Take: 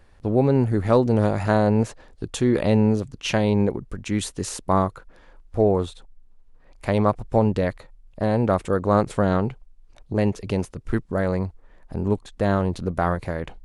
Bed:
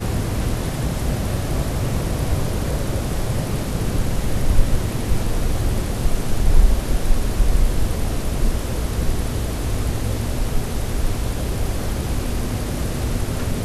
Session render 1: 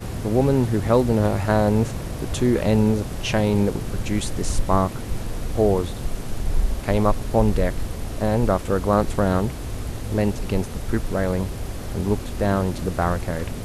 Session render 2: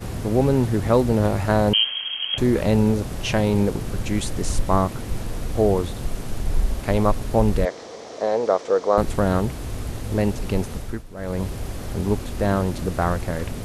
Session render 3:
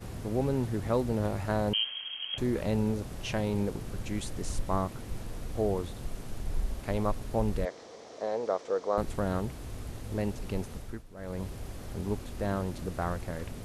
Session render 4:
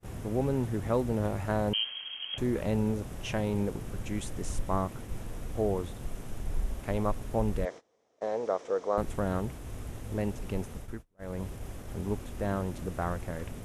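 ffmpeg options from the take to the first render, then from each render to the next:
-filter_complex "[1:a]volume=-7.5dB[a];[0:a][a]amix=inputs=2:normalize=0"
-filter_complex "[0:a]asettb=1/sr,asplit=3[a][b][c];[a]atrim=end=1.734[d];[b]atrim=start=1.73:end=2.38,asetpts=PTS-STARTPTS,afade=t=in:d=0.004:c=qsin,afade=t=out:st=0.646:d=0.004:c=qsin,lowpass=f=2.8k:t=q:w=0.5098,lowpass=f=2.8k:t=q:w=0.6013,lowpass=f=2.8k:t=q:w=0.9,lowpass=f=2.8k:t=q:w=2.563,afreqshift=-3300[e];[c]atrim=start=2.376[f];[d][e]acrossfade=d=0.004:c1=hsin:c2=qsin[g];[g][f]acrossfade=d=0.004:c1=qsin:c2=hsin,asettb=1/sr,asplit=3[h][i][j];[h]atrim=end=7.654[k];[i]atrim=start=7.65:end=8.98,asetpts=PTS-STARTPTS,afade=t=in:d=0.004:c=qsin,afade=t=out:st=1.326:d=0.004:c=qsin,highpass=430,equalizer=f=470:t=q:w=4:g=8,equalizer=f=680:t=q:w=4:g=3,equalizer=f=1.5k:t=q:w=4:g=-4,equalizer=f=2.7k:t=q:w=4:g=-6,equalizer=f=5.8k:t=q:w=4:g=4,lowpass=f=6.5k:w=0.5412,lowpass=f=6.5k:w=1.3066[l];[j]atrim=start=8.976[m];[k][l]acrossfade=d=0.004:c1=hsin:c2=qsin[n];[n][m]acrossfade=d=0.004:c1=qsin:c2=hsin,asplit=3[o][p][q];[o]atrim=end=11.04,asetpts=PTS-STARTPTS,afade=t=out:st=10.74:d=0.3:silence=0.188365[r];[p]atrim=start=11.04:end=11.15,asetpts=PTS-STARTPTS,volume=-14.5dB[s];[q]atrim=start=11.15,asetpts=PTS-STARTPTS,afade=t=in:d=0.3:silence=0.188365[t];[r][s][t]concat=n=3:v=0:a=1"
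-af "volume=-10.5dB"
-af "agate=range=-24dB:threshold=-41dB:ratio=16:detection=peak,equalizer=f=4.4k:t=o:w=0.41:g=-7.5"

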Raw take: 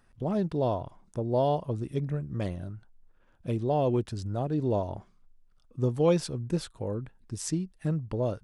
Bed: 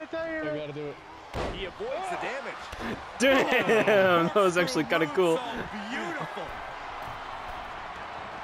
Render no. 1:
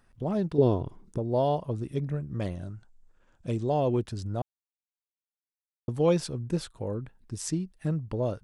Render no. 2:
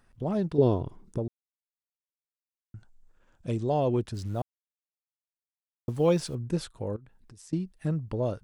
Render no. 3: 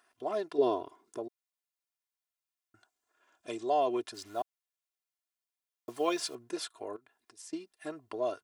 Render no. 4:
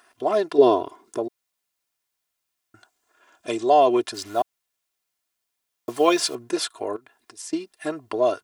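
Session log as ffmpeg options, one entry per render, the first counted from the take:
-filter_complex "[0:a]asettb=1/sr,asplit=3[a][b][c];[a]atrim=end=0.584[d];[b]atrim=start=0.58:end=1.18,asetpts=PTS-STARTPTS,afade=t=in:d=0.004:c=qsin,afade=t=out:st=0.596:d=0.004:c=qsin,lowshelf=f=510:t=q:w=3:g=6[e];[c]atrim=start=1.176[f];[d][e]acrossfade=d=0.004:c1=hsin:c2=qsin[g];[g][f]acrossfade=d=0.004:c1=qsin:c2=hsin,asettb=1/sr,asplit=3[h][i][j];[h]atrim=end=2.554[k];[i]atrim=start=2.55:end=3.8,asetpts=PTS-STARTPTS,afade=t=in:d=0.004:c=qsin,afade=t=out:st=1.246:d=0.004:c=qsin,lowpass=f=7.5k:t=q:w=3[l];[j]atrim=start=3.796[m];[k][l]acrossfade=d=0.004:c1=hsin:c2=qsin[n];[n][m]acrossfade=d=0.004:c1=qsin:c2=hsin,asplit=3[o][p][q];[o]atrim=end=4.42,asetpts=PTS-STARTPTS,afade=t=out:st=4.416:d=0.004:c=hsin[r];[p]atrim=start=4.42:end=5.88,asetpts=PTS-STARTPTS,volume=0[s];[q]atrim=start=5.88,asetpts=PTS-STARTPTS,afade=t=in:d=0.004:c=hsin[t];[r][s][t]concat=n=3:v=0:a=1"
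-filter_complex "[0:a]asettb=1/sr,asplit=3[a][b][c];[a]atrim=end=4.144[d];[b]atrim=start=4.14:end=6.35,asetpts=PTS-STARTPTS,afade=t=in:d=0.004:c=qsin,afade=t=out:st=2.206:d=0.004:c=qsin,acrusher=bits=8:mix=0:aa=0.5[e];[c]atrim=start=6.346[f];[d][e]acrossfade=d=0.004:c1=hsin:c2=qsin[g];[g][f]acrossfade=d=0.004:c1=qsin:c2=hsin,asettb=1/sr,asplit=3[h][i][j];[h]atrim=end=6.964[k];[i]atrim=start=6.96:end=7.53,asetpts=PTS-STARTPTS,afade=t=in:d=0.004:c=qsin,afade=t=out:st=0.566:d=0.004:c=qsin,acompressor=threshold=-48dB:ratio=8:attack=3.2:release=140:knee=1:detection=peak[l];[j]atrim=start=7.526[m];[k][l]acrossfade=d=0.004:c1=hsin:c2=qsin[n];[n][m]acrossfade=d=0.004:c1=qsin:c2=hsin,asplit=3[o][p][q];[o]atrim=end=1.28,asetpts=PTS-STARTPTS,afade=t=out:st=1.276:d=0.004:c=hsin[r];[p]atrim=start=1.28:end=2.74,asetpts=PTS-STARTPTS,volume=0[s];[q]atrim=start=2.74,asetpts=PTS-STARTPTS,afade=t=in:d=0.004:c=hsin[t];[r][s][t]concat=n=3:v=0:a=1"
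-af "highpass=560,aecho=1:1:2.9:0.76"
-af "volume=12dB"

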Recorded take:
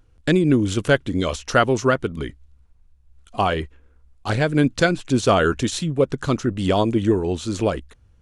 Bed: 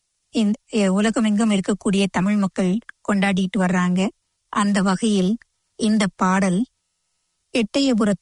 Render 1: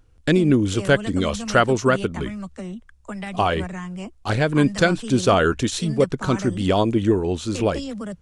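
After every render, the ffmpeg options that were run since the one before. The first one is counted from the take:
-filter_complex "[1:a]volume=-13dB[a];[0:a][a]amix=inputs=2:normalize=0"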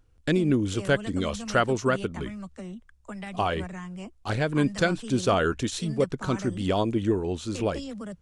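-af "volume=-6dB"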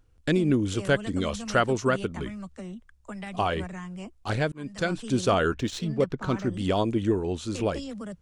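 -filter_complex "[0:a]asettb=1/sr,asplit=3[a][b][c];[a]atrim=end=5.544[d];[b]atrim=start=5.54:end=6.54,asetpts=PTS-STARTPTS,afade=t=in:d=0.004:c=qsin,afade=t=out:st=0.996:d=0.004:c=qsin,adynamicsmooth=sensitivity=5:basefreq=3.9k[e];[c]atrim=start=6.536[f];[d][e]acrossfade=d=0.004:c1=hsin:c2=qsin[g];[g][f]acrossfade=d=0.004:c1=qsin:c2=hsin,asplit=2[h][i];[h]atrim=end=4.52,asetpts=PTS-STARTPTS,afade=t=out:st=4.516:d=0.004:c=hsin[j];[i]atrim=start=4.52,asetpts=PTS-STARTPTS,afade=t=in:d=0.51[k];[j][k]concat=n=2:v=0:a=1"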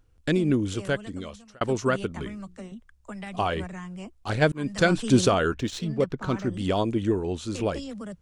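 -filter_complex "[0:a]asettb=1/sr,asplit=3[a][b][c];[a]atrim=end=2.124[d];[b]atrim=start=2.12:end=2.72,asetpts=PTS-STARTPTS,afade=t=in:d=0.004:c=qsin,afade=t=out:st=0.596:d=0.004:c=qsin,bandreject=f=60:t=h:w=6,bandreject=f=120:t=h:w=6,bandreject=f=180:t=h:w=6,bandreject=f=240:t=h:w=6,bandreject=f=300:t=h:w=6,bandreject=f=360:t=h:w=6,bandreject=f=420:t=h:w=6,bandreject=f=480:t=h:w=6[e];[c]atrim=start=2.716[f];[d][e]acrossfade=d=0.004:c1=hsin:c2=qsin[g];[g][f]acrossfade=d=0.004:c1=qsin:c2=hsin,asplit=3[h][i][j];[h]afade=t=out:st=4.41:d=0.02[k];[i]acontrast=77,afade=t=in:st=4.41:d=0.02,afade=t=out:st=5.27:d=0.02[l];[j]afade=t=in:st=5.27:d=0.02[m];[k][l][m]amix=inputs=3:normalize=0,asplit=2[n][o];[n]atrim=end=1.61,asetpts=PTS-STARTPTS,afade=t=out:st=0.57:d=1.04[p];[o]atrim=start=1.61,asetpts=PTS-STARTPTS,afade=t=in:d=0.004:c=hsin[q];[p][q]concat=n=2:v=0:a=1"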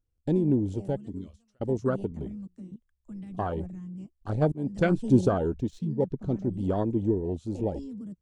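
-af "equalizer=f=1.5k:t=o:w=2.4:g=-8,afwtdn=0.0316"

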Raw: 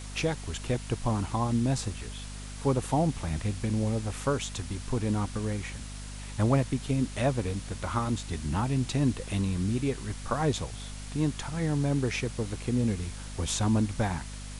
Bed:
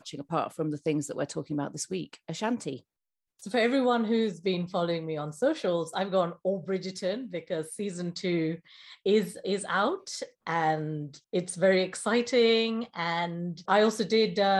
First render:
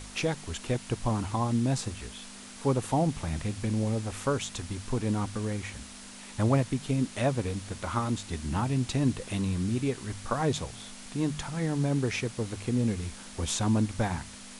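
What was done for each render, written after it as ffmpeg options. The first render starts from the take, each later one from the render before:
-af "bandreject=f=50:t=h:w=4,bandreject=f=100:t=h:w=4,bandreject=f=150:t=h:w=4"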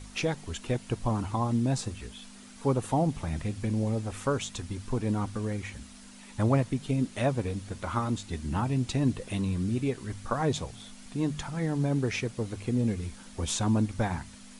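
-af "afftdn=nr=7:nf=-46"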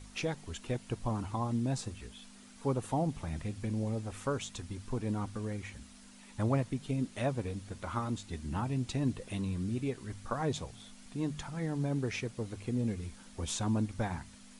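-af "volume=-5.5dB"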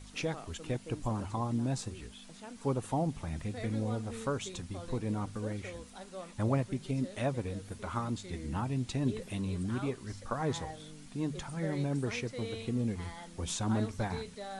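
-filter_complex "[1:a]volume=-18.5dB[a];[0:a][a]amix=inputs=2:normalize=0"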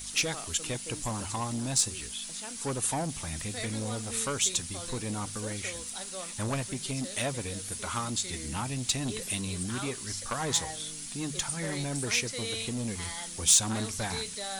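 -af "asoftclip=type=tanh:threshold=-27dB,crystalizer=i=8.5:c=0"

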